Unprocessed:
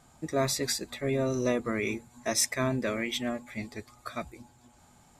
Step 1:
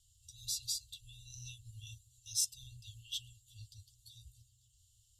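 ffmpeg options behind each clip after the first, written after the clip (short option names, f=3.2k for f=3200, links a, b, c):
-af "afftfilt=real='re*(1-between(b*sr/4096,120,2700))':imag='im*(1-between(b*sr/4096,120,2700))':win_size=4096:overlap=0.75,volume=-6dB"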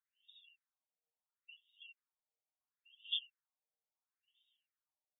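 -af "aecho=1:1:6.5:0.72,afftfilt=real='re*between(b*sr/1024,610*pow(2700/610,0.5+0.5*sin(2*PI*0.73*pts/sr))/1.41,610*pow(2700/610,0.5+0.5*sin(2*PI*0.73*pts/sr))*1.41)':imag='im*between(b*sr/1024,610*pow(2700/610,0.5+0.5*sin(2*PI*0.73*pts/sr))/1.41,610*pow(2700/610,0.5+0.5*sin(2*PI*0.73*pts/sr))*1.41)':win_size=1024:overlap=0.75,volume=4dB"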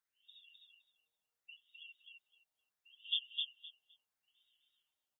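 -af "aecho=1:1:258|516|774:0.708|0.127|0.0229,volume=2dB"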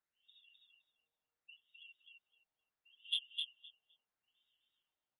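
-af "adynamicsmooth=sensitivity=2.5:basefreq=3.1k,volume=1.5dB"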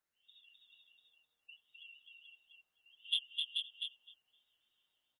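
-af "aecho=1:1:434:0.631,volume=2.5dB"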